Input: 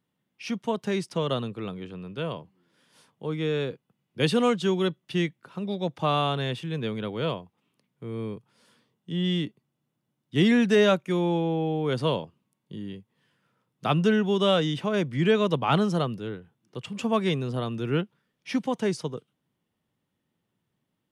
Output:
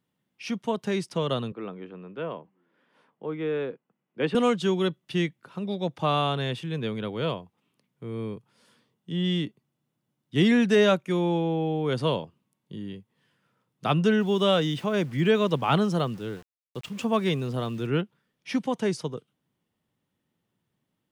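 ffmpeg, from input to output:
ffmpeg -i in.wav -filter_complex "[0:a]asettb=1/sr,asplit=3[link_01][link_02][link_03];[link_01]atrim=end=1.524[link_04];[link_02]atrim=start=1.52:end=4.35,asetpts=PTS-STARTPTS,afade=type=in:duration=0.004:curve=qsin,afade=type=out:start_time=2.826:duration=0.004:curve=qsin,acrossover=split=180 2600:gain=0.0891 1 0.0708[link_05][link_06][link_07];[link_05][link_06][link_07]amix=inputs=3:normalize=0[link_08];[link_03]atrim=start=4.346[link_09];[link_04][link_08]acrossfade=duration=0.004:curve1=hsin:curve2=qsin[link_10];[link_10][link_09]acrossfade=duration=0.004:curve1=qsin:curve2=hsin,asettb=1/sr,asplit=3[link_11][link_12][link_13];[link_11]atrim=end=14.204[link_14];[link_12]atrim=start=14.2:end=17.87,asetpts=PTS-STARTPTS,afade=type=in:duration=0.004:curve=qsin,afade=type=out:start_time=3.666:duration=0.004:curve=qsin,aeval=exprs='val(0)*gte(abs(val(0)),0.00531)':channel_layout=same[link_15];[link_13]atrim=start=17.866[link_16];[link_14][link_15]acrossfade=duration=0.004:curve1=hsin:curve2=qsin[link_17];[link_17][link_16]acrossfade=duration=0.004:curve1=qsin:curve2=hsin" out.wav

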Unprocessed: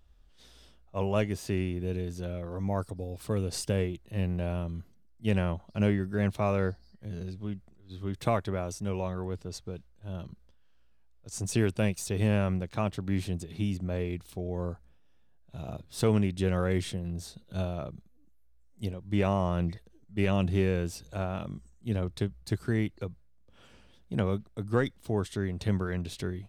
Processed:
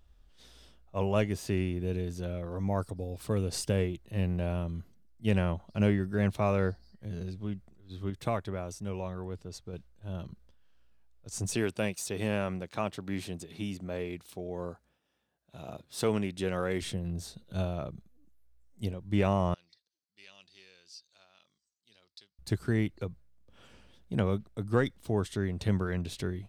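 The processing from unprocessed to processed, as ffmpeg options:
ffmpeg -i in.wav -filter_complex "[0:a]asettb=1/sr,asplit=3[link_01][link_02][link_03];[link_01]atrim=end=11.554[link_04];[link_02]atrim=start=11.55:end=16.82,asetpts=PTS-STARTPTS,afade=type=in:duration=0.004:curve=qsin,afade=type=out:start_time=5.266:duration=0.004:curve=qsin,highpass=frequency=300:poles=1[link_05];[link_03]atrim=start=16.816[link_06];[link_04][link_05]acrossfade=duration=0.004:curve1=hsin:curve2=qsin[link_07];[link_07][link_06]acrossfade=duration=0.004:curve1=qsin:curve2=hsin,asettb=1/sr,asplit=3[link_08][link_09][link_10];[link_08]atrim=end=19.544[link_11];[link_09]atrim=start=19.54:end=22.39,asetpts=PTS-STARTPTS,afade=type=in:duration=0.004:curve=qsin,afade=type=out:start_time=2.846:duration=0.004:curve=qsin,bandpass=frequency=4700:width_type=q:width=4.9[link_12];[link_10]atrim=start=22.386[link_13];[link_11][link_12]acrossfade=duration=0.004:curve1=hsin:curve2=qsin[link_14];[link_14][link_13]acrossfade=duration=0.004:curve1=qsin:curve2=hsin,asplit=3[link_15][link_16][link_17];[link_15]atrim=end=8.102[link_18];[link_16]atrim=start=8.098:end=9.732,asetpts=PTS-STARTPTS,volume=-4dB[link_19];[link_17]atrim=start=9.728[link_20];[link_18][link_19]acrossfade=duration=0.004:curve1=hsin:curve2=hsin[link_21];[link_21][link_20]acrossfade=duration=0.004:curve1=hsin:curve2=hsin" out.wav

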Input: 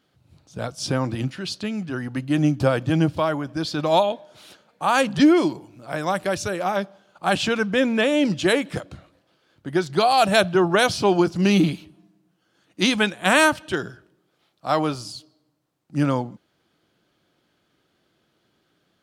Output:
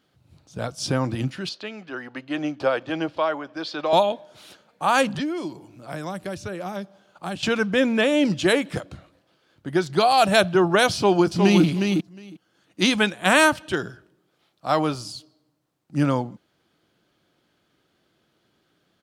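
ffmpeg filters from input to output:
ffmpeg -i in.wav -filter_complex "[0:a]asettb=1/sr,asplit=3[link_01][link_02][link_03];[link_01]atrim=end=1.494[link_04];[link_02]atrim=start=1.49:end=3.93,asetpts=PTS-STARTPTS,afade=type=in:duration=0.004:curve=qsin,afade=type=out:start_time=2.436:duration=0.004:curve=qsin,acrossover=split=330 5100:gain=0.0891 1 0.112[link_05][link_06][link_07];[link_05][link_06][link_07]amix=inputs=3:normalize=0[link_08];[link_03]atrim=start=3.926[link_09];[link_04][link_08]acrossfade=duration=0.004:curve1=hsin:curve2=qsin[link_10];[link_10][link_09]acrossfade=duration=0.004:curve1=qsin:curve2=hsin,asettb=1/sr,asplit=3[link_11][link_12][link_13];[link_11]atrim=end=5.154[link_14];[link_12]atrim=start=5.15:end=7.43,asetpts=PTS-STARTPTS,afade=type=in:duration=0.004:curve=qsin,afade=type=out:start_time=2.276:duration=0.004:curve=qsin,acrossover=split=350|4000[link_15][link_16][link_17];[link_15]acompressor=threshold=-32dB:ratio=4[link_18];[link_16]acompressor=threshold=-34dB:ratio=4[link_19];[link_17]acompressor=threshold=-48dB:ratio=4[link_20];[link_18][link_19][link_20]amix=inputs=3:normalize=0[link_21];[link_13]atrim=start=7.426[link_22];[link_14][link_21]acrossfade=duration=0.004:curve1=hsin:curve2=qsin[link_23];[link_23][link_22]acrossfade=duration=0.004:curve1=qsin:curve2=hsin,asplit=2[link_24][link_25];[link_25]afade=type=in:start_time=10.95:duration=0.01,afade=type=out:start_time=11.64:duration=0.01,aecho=0:1:360|720:0.562341|0.0562341[link_26];[link_24][link_26]amix=inputs=2:normalize=0" out.wav

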